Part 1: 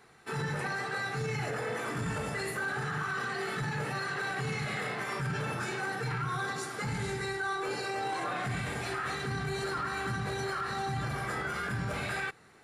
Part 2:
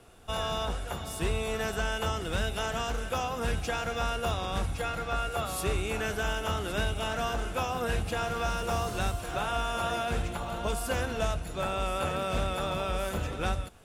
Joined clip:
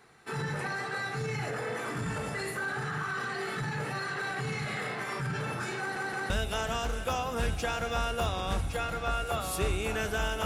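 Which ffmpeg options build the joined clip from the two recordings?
-filter_complex "[0:a]apad=whole_dur=10.45,atrim=end=10.45,asplit=3[s0][s1][s2];[s0]atrim=end=5.962[s3];[s1]atrim=start=5.788:end=5.962[s4];[s2]atrim=start=5.788:end=5.962[s5];[1:a]atrim=start=2.348:end=6.5[s6];[s3][s4]acrossfade=d=0.004:c1=hsin:c2=hsin[s7];[s7][s5]acrossfade=d=0.004:c1=hsin:c2=hsin[s8];[s8][s6]acrossfade=d=0.004:c1=hsin:c2=hsin"

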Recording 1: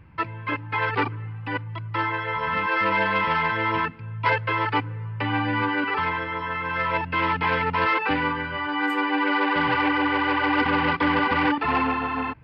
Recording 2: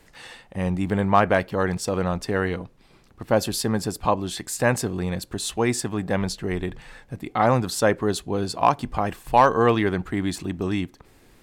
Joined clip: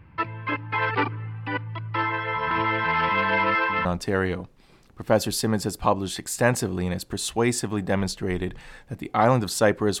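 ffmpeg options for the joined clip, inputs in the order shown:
-filter_complex "[0:a]apad=whole_dur=10,atrim=end=10,asplit=2[s0][s1];[s0]atrim=end=2.512[s2];[s1]atrim=start=2.508:end=3.852,asetpts=PTS-STARTPTS,areverse[s3];[1:a]atrim=start=2.058:end=8.21[s4];[s2][s3]acrossfade=d=0.004:c1=hsin:c2=hsin[s5];[s5][s4]acrossfade=d=0.004:c1=hsin:c2=hsin"

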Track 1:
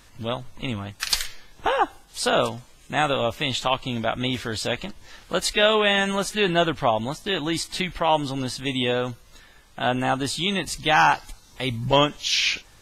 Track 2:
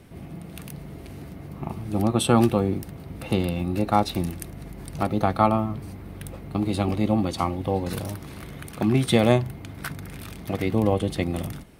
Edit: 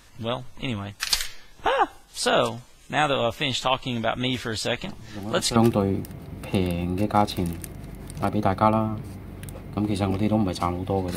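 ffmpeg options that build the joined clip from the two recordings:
-filter_complex "[1:a]asplit=2[s0][s1];[0:a]apad=whole_dur=11.16,atrim=end=11.16,atrim=end=5.562[s2];[s1]atrim=start=2.338:end=7.94[s3];[s0]atrim=start=1.59:end=2.34,asetpts=PTS-STARTPTS,volume=0.282,afade=t=in:d=0.004:c=hsin,afade=t=out:st=0.746:d=0.004:c=hsin,adelay=212121S[s4];[s2][s3]acrossfade=d=0.004:c1=hsin:c2=hsin[s5];[s5][s4]amix=inputs=2:normalize=0"

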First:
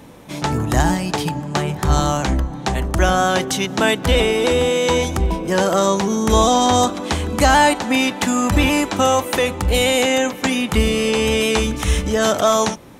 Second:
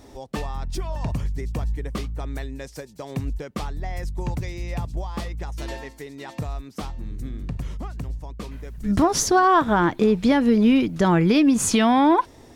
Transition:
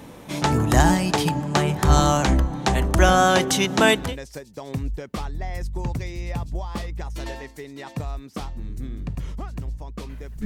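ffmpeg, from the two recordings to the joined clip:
-filter_complex "[0:a]apad=whole_dur=10.45,atrim=end=10.45,atrim=end=4.16,asetpts=PTS-STARTPTS[s0];[1:a]atrim=start=2.34:end=8.87,asetpts=PTS-STARTPTS[s1];[s0][s1]acrossfade=d=0.24:c1=tri:c2=tri"

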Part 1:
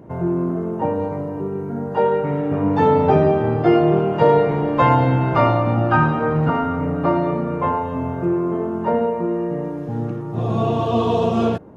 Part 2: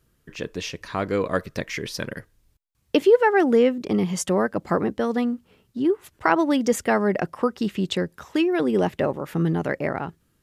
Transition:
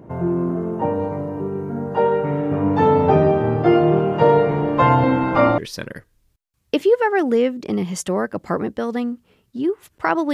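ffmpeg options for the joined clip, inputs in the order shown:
-filter_complex "[0:a]asettb=1/sr,asplit=3[s0][s1][s2];[s0]atrim=end=5.034[s3];[s1]atrim=start=5.03:end=5.58,asetpts=PTS-STARTPTS,afade=t=in:d=0.004:c=qsin,afade=t=out:st=0.546:d=0.004:c=qsin,aecho=1:1:3.7:0.68,atrim=end_sample=24255[s4];[s2]atrim=start=5.576[s5];[s3][s4]acrossfade=d=0.004:c1=hsin:c2=qsin[s6];[s6][s5]acrossfade=d=0.004:c1=qsin:c2=hsin,apad=whole_dur=10.33,atrim=end=10.33,atrim=end=5.582[s7];[1:a]atrim=start=1.788:end=6.54[s8];[s7][s8]acrossfade=d=0.004:c1=hsin:c2=hsin"

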